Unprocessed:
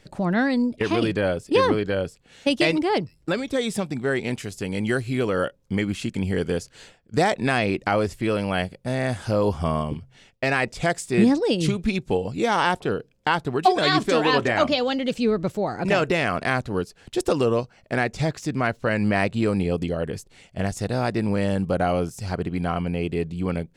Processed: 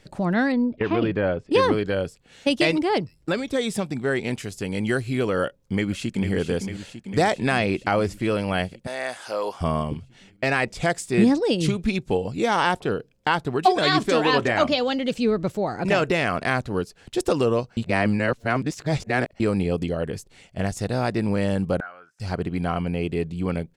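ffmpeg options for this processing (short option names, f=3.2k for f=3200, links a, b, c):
-filter_complex "[0:a]asettb=1/sr,asplit=3[a][b][c];[a]atrim=end=0.524[d];[b]atrim=start=0.52:end=1.51,asetpts=PTS-STARTPTS,afade=t=in:d=0.004:c=qsin,afade=t=out:st=0.986:d=0.004:c=qsin,lowpass=2.3k[e];[c]atrim=start=1.506[f];[d][e]acrossfade=d=0.004:c1=hsin:c2=qsin[g];[g][f]acrossfade=d=0.004:c1=qsin:c2=hsin,asplit=2[h][i];[i]afade=t=in:st=5.47:d=0.01,afade=t=out:st=6.31:d=0.01,aecho=0:1:450|900|1350|1800|2250|2700|3150|3600|4050|4500|4950:0.375837|0.263086|0.18416|0.128912|0.0902386|0.063167|0.0442169|0.0309518|0.0216663|0.0151664|0.0106165[j];[h][j]amix=inputs=2:normalize=0,asettb=1/sr,asplit=3[k][l][m];[k]atrim=end=8.874[n];[l]atrim=start=8.87:end=9.61,asetpts=PTS-STARTPTS,afade=t=in:d=0.004:c=qsin,afade=t=out:st=0.736:d=0.004:c=qsin,highpass=610[o];[m]atrim=start=9.606[p];[n][o]acrossfade=d=0.004:c1=hsin:c2=qsin[q];[q][p]acrossfade=d=0.004:c1=qsin:c2=hsin,asettb=1/sr,asplit=3[r][s][t];[r]atrim=end=21.804[u];[s]atrim=start=21.8:end=22.2,asetpts=PTS-STARTPTS,afade=t=in:d=0.004:c=qsin,afade=t=out:st=0.396:d=0.004:c=qsin,bandpass=f=1.5k:t=q:w=8.2[v];[t]atrim=start=22.196[w];[u][v]acrossfade=d=0.004:c1=hsin:c2=qsin[x];[x][w]acrossfade=d=0.004:c1=qsin:c2=hsin,asplit=3[y][z][aa];[y]atrim=end=17.772[ab];[z]atrim=start=17.768:end=19.402,asetpts=PTS-STARTPTS,areverse[ac];[aa]atrim=start=19.398[ad];[ab][ac]acrossfade=d=0.004:c1=hsin:c2=hsin[ae];[ae][ad]acrossfade=d=0.004:c1=hsin:c2=hsin"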